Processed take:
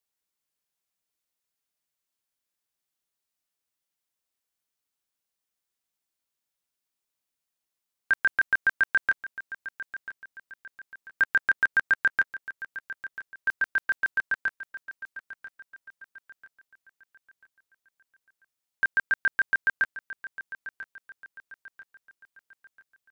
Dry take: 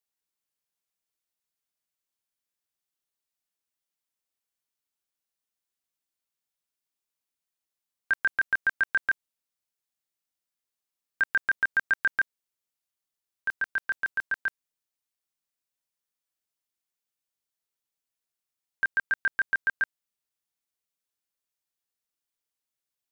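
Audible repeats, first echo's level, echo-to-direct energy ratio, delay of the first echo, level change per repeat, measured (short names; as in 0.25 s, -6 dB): 3, -14.5 dB, -14.0 dB, 0.991 s, -8.0 dB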